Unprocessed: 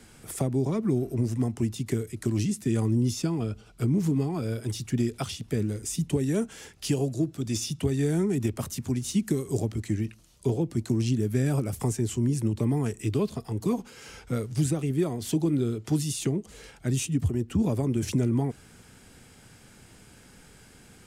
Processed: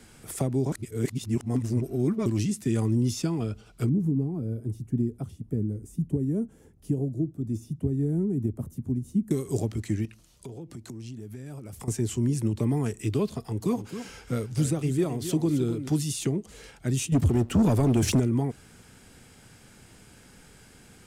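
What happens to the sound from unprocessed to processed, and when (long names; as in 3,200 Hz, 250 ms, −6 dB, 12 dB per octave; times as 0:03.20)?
0:00.72–0:02.26: reverse
0:03.89–0:09.31: drawn EQ curve 270 Hz 0 dB, 2,700 Hz −26 dB, 4,800 Hz −27 dB, 11,000 Hz −14 dB
0:10.05–0:11.88: downward compressor 5 to 1, threshold −38 dBFS
0:13.43–0:15.89: single-tap delay 267 ms −10.5 dB
0:17.12–0:18.20: leveller curve on the samples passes 2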